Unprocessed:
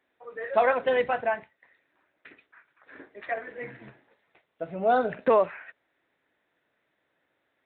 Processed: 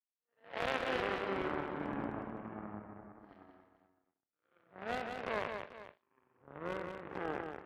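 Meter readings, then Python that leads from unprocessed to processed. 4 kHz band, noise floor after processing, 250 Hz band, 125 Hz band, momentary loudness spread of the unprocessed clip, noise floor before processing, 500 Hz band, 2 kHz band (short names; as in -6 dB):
n/a, under -85 dBFS, -3.5 dB, -1.0 dB, 18 LU, -76 dBFS, -13.5 dB, -8.0 dB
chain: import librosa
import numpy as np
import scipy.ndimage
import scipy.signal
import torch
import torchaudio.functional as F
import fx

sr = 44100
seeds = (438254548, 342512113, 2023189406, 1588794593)

y = fx.spec_blur(x, sr, span_ms=224.0)
y = fx.env_lowpass_down(y, sr, base_hz=2400.0, full_db=-27.0)
y = fx.power_curve(y, sr, exponent=3.0)
y = scipy.signal.sosfilt(scipy.signal.butter(4, 79.0, 'highpass', fs=sr, output='sos'), y)
y = fx.high_shelf(y, sr, hz=3200.0, db=8.5)
y = fx.echo_pitch(y, sr, ms=125, semitones=-5, count=3, db_per_echo=-3.0)
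y = fx.clip_asym(y, sr, top_db=-32.0, bottom_db=-21.0)
y = fx.env_lowpass(y, sr, base_hz=1800.0, full_db=-38.0)
y = fx.echo_multitap(y, sr, ms=(182, 439), db=(-5.5, -14.5))
y = y * 10.0 ** (1.5 / 20.0)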